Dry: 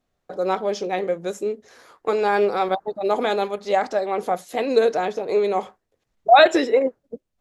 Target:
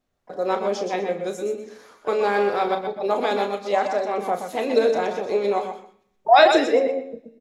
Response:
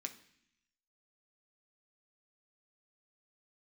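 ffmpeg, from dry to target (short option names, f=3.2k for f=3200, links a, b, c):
-filter_complex "[0:a]aecho=1:1:34.99|125.4:0.355|0.355,asplit=2[a][b];[1:a]atrim=start_sample=2205,adelay=122[c];[b][c]afir=irnorm=-1:irlink=0,volume=-7dB[d];[a][d]amix=inputs=2:normalize=0,asplit=2[e][f];[f]asetrate=58866,aresample=44100,atempo=0.749154,volume=-16dB[g];[e][g]amix=inputs=2:normalize=0,volume=-2dB"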